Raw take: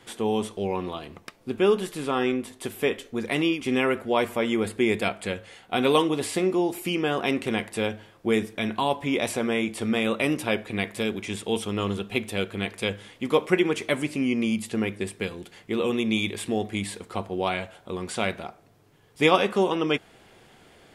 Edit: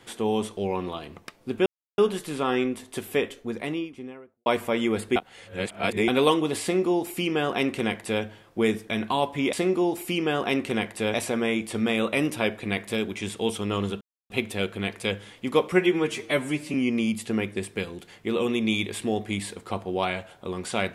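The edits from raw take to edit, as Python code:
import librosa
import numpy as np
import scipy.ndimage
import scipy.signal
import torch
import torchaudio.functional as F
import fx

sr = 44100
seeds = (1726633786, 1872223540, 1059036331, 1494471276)

y = fx.studio_fade_out(x, sr, start_s=2.78, length_s=1.36)
y = fx.edit(y, sr, fx.insert_silence(at_s=1.66, length_s=0.32),
    fx.reverse_span(start_s=4.84, length_s=0.92),
    fx.duplicate(start_s=6.3, length_s=1.61, to_s=9.21),
    fx.insert_silence(at_s=12.08, length_s=0.29),
    fx.stretch_span(start_s=13.5, length_s=0.68, factor=1.5), tone=tone)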